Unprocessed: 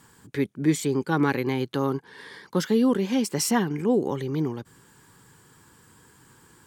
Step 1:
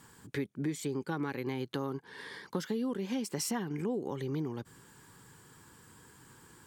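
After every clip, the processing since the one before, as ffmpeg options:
ffmpeg -i in.wav -af "acompressor=threshold=-30dB:ratio=5,volume=-2dB" out.wav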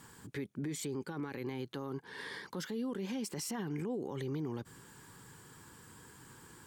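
ffmpeg -i in.wav -af "alimiter=level_in=8.5dB:limit=-24dB:level=0:latency=1:release=34,volume=-8.5dB,volume=1.5dB" out.wav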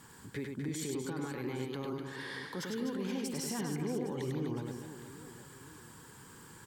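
ffmpeg -i in.wav -af "aecho=1:1:100|250|475|812.5|1319:0.631|0.398|0.251|0.158|0.1" out.wav

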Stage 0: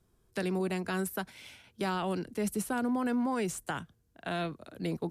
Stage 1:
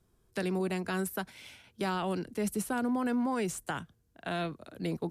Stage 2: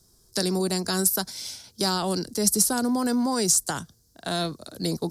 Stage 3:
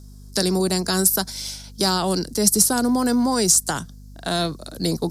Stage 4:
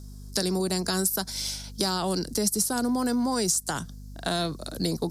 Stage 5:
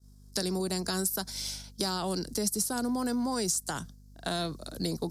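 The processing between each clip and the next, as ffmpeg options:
ffmpeg -i in.wav -af anull out.wav
ffmpeg -i in.wav -af "highshelf=frequency=3600:width_type=q:width=3:gain=11.5,volume=6dB" out.wav
ffmpeg -i in.wav -af "aeval=exprs='val(0)+0.00562*(sin(2*PI*50*n/s)+sin(2*PI*2*50*n/s)/2+sin(2*PI*3*50*n/s)/3+sin(2*PI*4*50*n/s)/4+sin(2*PI*5*50*n/s)/5)':channel_layout=same,volume=4.5dB" out.wav
ffmpeg -i in.wav -af "acompressor=threshold=-25dB:ratio=3" out.wav
ffmpeg -i in.wav -af "agate=range=-33dB:threshold=-35dB:ratio=3:detection=peak,volume=-4.5dB" out.wav

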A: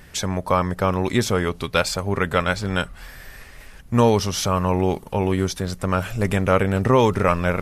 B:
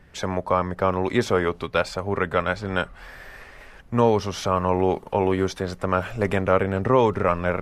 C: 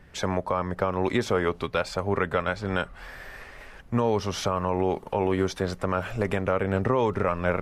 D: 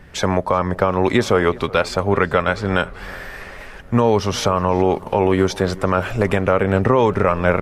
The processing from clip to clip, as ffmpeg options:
ffmpeg -i in.wav -filter_complex "[0:a]lowpass=frequency=1600:poles=1,acrossover=split=330[link_01][link_02];[link_02]dynaudnorm=framelen=120:gausssize=3:maxgain=10dB[link_03];[link_01][link_03]amix=inputs=2:normalize=0,volume=-5.5dB" out.wav
ffmpeg -i in.wav -af "alimiter=limit=-12.5dB:level=0:latency=1:release=186" out.wav
ffmpeg -i in.wav -filter_complex "[0:a]asplit=2[link_01][link_02];[link_02]adelay=373,lowpass=frequency=3400:poles=1,volume=-21dB,asplit=2[link_03][link_04];[link_04]adelay=373,lowpass=frequency=3400:poles=1,volume=0.52,asplit=2[link_05][link_06];[link_06]adelay=373,lowpass=frequency=3400:poles=1,volume=0.52,asplit=2[link_07][link_08];[link_08]adelay=373,lowpass=frequency=3400:poles=1,volume=0.52[link_09];[link_01][link_03][link_05][link_07][link_09]amix=inputs=5:normalize=0,volume=8.5dB" out.wav

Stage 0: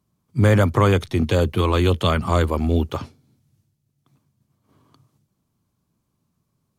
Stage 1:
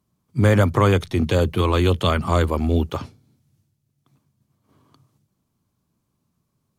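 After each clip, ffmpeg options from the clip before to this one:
ffmpeg -i in.wav -af "bandreject=frequency=54.57:width_type=h:width=4,bandreject=frequency=109.14:width_type=h:width=4,bandreject=frequency=163.71:width_type=h:width=4" out.wav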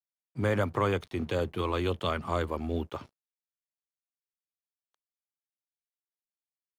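ffmpeg -i in.wav -af "aeval=exprs='sgn(val(0))*max(abs(val(0))-0.00631,0)':channel_layout=same,bass=frequency=250:gain=-6,treble=frequency=4000:gain=-6,volume=-8.5dB" out.wav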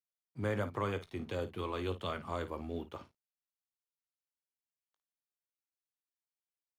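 ffmpeg -i in.wav -af "aecho=1:1:19|54:0.237|0.211,volume=-8dB" out.wav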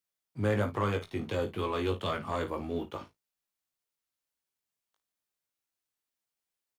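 ffmpeg -i in.wav -filter_complex "[0:a]asoftclip=type=tanh:threshold=-26dB,asplit=2[link_01][link_02];[link_02]adelay=19,volume=-8.5dB[link_03];[link_01][link_03]amix=inputs=2:normalize=0,volume=5.5dB" out.wav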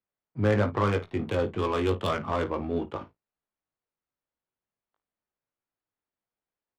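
ffmpeg -i in.wav -af "adynamicsmooth=sensitivity=6:basefreq=1700,volume=5dB" out.wav

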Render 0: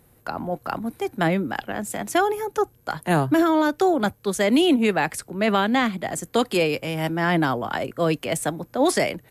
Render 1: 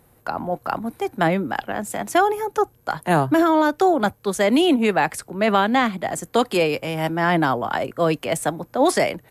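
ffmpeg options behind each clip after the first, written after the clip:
ffmpeg -i in.wav -af "equalizer=frequency=880:width_type=o:width=1.6:gain=4.5" out.wav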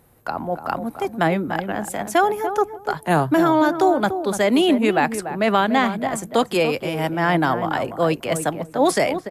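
ffmpeg -i in.wav -filter_complex "[0:a]asplit=2[link_01][link_02];[link_02]adelay=291,lowpass=frequency=1000:poles=1,volume=-8dB,asplit=2[link_03][link_04];[link_04]adelay=291,lowpass=frequency=1000:poles=1,volume=0.18,asplit=2[link_05][link_06];[link_06]adelay=291,lowpass=frequency=1000:poles=1,volume=0.18[link_07];[link_01][link_03][link_05][link_07]amix=inputs=4:normalize=0" out.wav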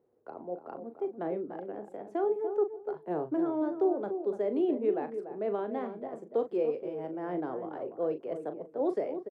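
ffmpeg -i in.wav -filter_complex "[0:a]bandpass=frequency=420:width_type=q:width=3.3:csg=0,asplit=2[link_01][link_02];[link_02]adelay=39,volume=-10dB[link_03];[link_01][link_03]amix=inputs=2:normalize=0,volume=-6dB" out.wav

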